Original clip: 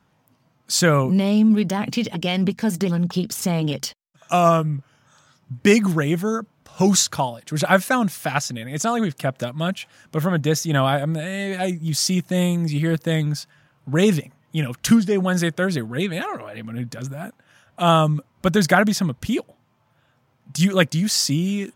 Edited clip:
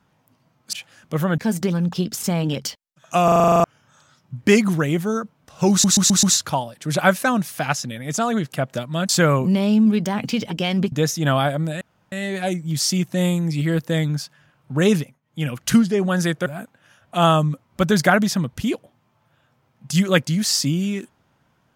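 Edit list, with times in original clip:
0.73–2.56 swap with 9.75–10.4
4.42 stutter in place 0.04 s, 10 plays
6.89 stutter 0.13 s, 5 plays
11.29 insert room tone 0.31 s
14.11–14.65 dip -17.5 dB, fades 0.26 s
15.63–17.11 cut

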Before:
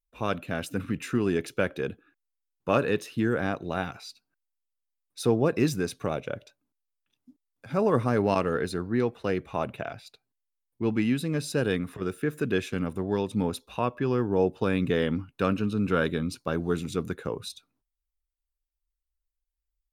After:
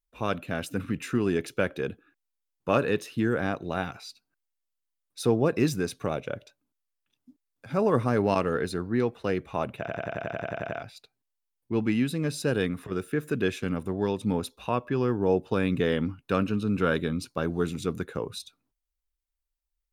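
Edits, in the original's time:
9.79 stutter 0.09 s, 11 plays

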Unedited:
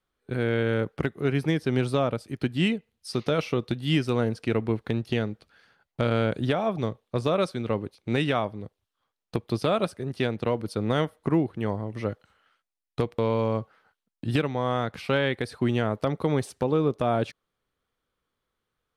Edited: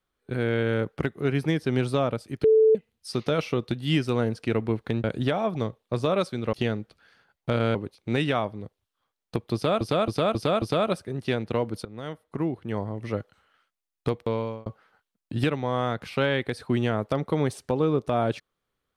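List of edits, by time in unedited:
2.44–2.75 bleep 439 Hz -14 dBFS
5.04–6.26 move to 7.75
9.54–9.81 loop, 5 plays
10.77–11.88 fade in, from -19 dB
13–13.58 fade out equal-power

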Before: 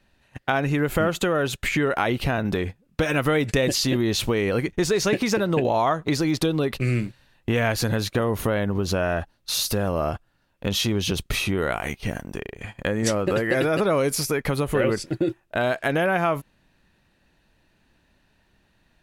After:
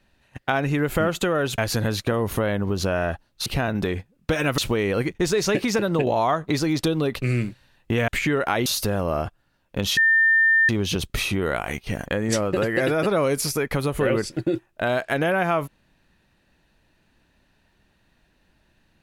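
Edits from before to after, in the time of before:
1.58–2.16 swap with 7.66–9.54
3.28–4.16 cut
10.85 add tone 1800 Hz -14 dBFS 0.72 s
12.22–12.8 cut

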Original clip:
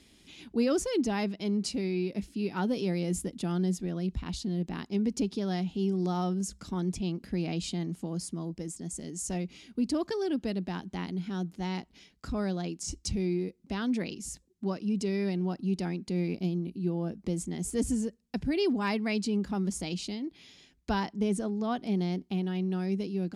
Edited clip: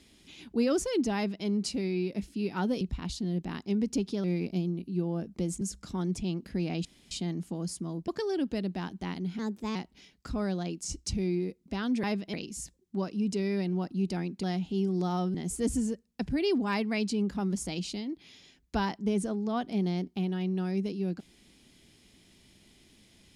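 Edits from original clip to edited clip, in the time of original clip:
1.15–1.45 copy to 14.02
2.81–4.05 cut
5.48–6.39 swap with 16.12–17.49
7.63 insert room tone 0.26 s
8.6–10 cut
11.31–11.74 speed 118%

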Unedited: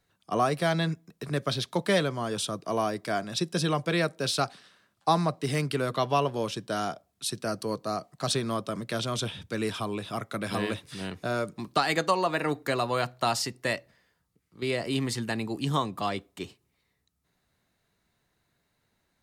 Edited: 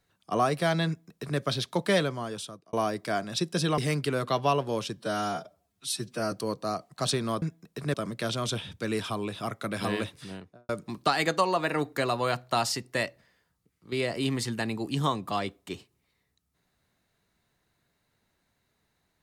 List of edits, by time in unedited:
0.87–1.39 copy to 8.64
2.02–2.73 fade out
3.78–5.45 cut
6.64–7.54 stretch 1.5×
10.77–11.39 studio fade out

